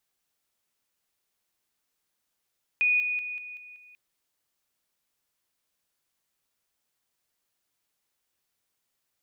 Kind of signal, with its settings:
level staircase 2,470 Hz −20 dBFS, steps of −6 dB, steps 6, 0.19 s 0.00 s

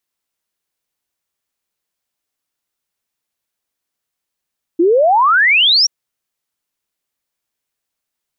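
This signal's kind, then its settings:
exponential sine sweep 320 Hz → 5,800 Hz 1.08 s −8 dBFS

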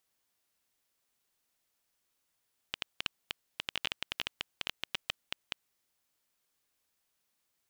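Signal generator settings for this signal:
Geiger counter clicks 10 per second −14.5 dBFS 2.96 s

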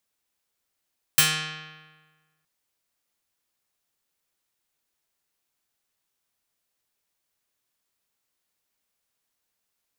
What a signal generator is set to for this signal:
Karplus-Strong string D#3, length 1.27 s, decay 1.42 s, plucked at 0.48, medium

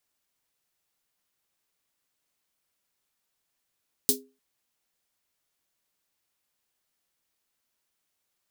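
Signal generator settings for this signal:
synth snare length 0.30 s, tones 260 Hz, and 410 Hz, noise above 4,000 Hz, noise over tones 11 dB, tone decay 0.32 s, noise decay 0.14 s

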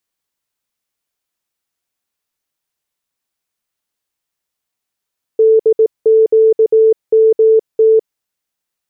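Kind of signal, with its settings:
Morse code "DQMT" 18 words per minute 442 Hz −5.5 dBFS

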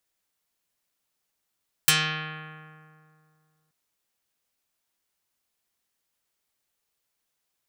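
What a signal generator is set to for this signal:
Karplus-Strong string D#3, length 1.83 s, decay 2.38 s, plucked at 0.48, dark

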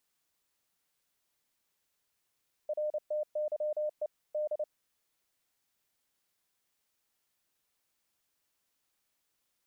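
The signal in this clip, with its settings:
Morse code "RTYE D" 29 words per minute 605 Hz −29.5 dBFS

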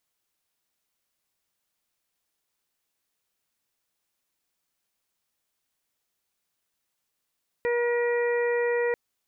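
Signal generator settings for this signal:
steady harmonic partials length 1.29 s, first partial 478 Hz, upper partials −12.5/−17/−8/−17 dB, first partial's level −23 dB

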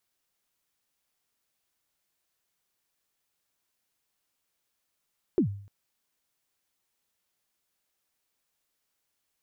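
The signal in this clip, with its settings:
synth kick length 0.30 s, from 410 Hz, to 100 Hz, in 98 ms, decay 0.54 s, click off, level −17 dB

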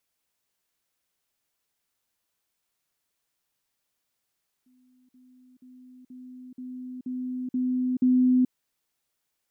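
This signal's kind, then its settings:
level staircase 253 Hz −59 dBFS, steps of 6 dB, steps 8, 0.43 s 0.05 s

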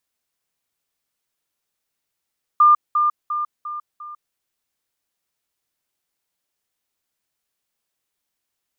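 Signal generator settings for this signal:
level staircase 1,200 Hz −8.5 dBFS, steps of −6 dB, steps 5, 0.15 s 0.20 s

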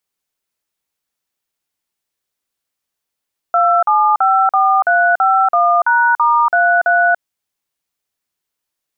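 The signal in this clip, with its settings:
touch tones "2754351#*33", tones 287 ms, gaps 45 ms, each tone −12 dBFS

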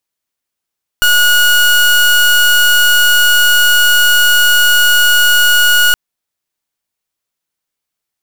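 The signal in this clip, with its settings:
pulse wave 1,450 Hz, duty 28% −8.5 dBFS 4.92 s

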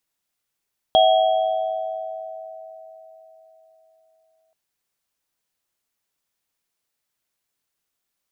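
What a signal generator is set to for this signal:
inharmonic partials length 3.58 s, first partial 646 Hz, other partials 750/3,280 Hz, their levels 0/−5 dB, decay 4.24 s, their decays 3.42/1.33 s, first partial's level −13.5 dB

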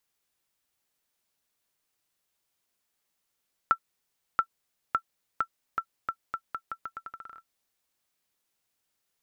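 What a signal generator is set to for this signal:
bouncing ball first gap 0.68 s, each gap 0.82, 1,340 Hz, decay 73 ms −10.5 dBFS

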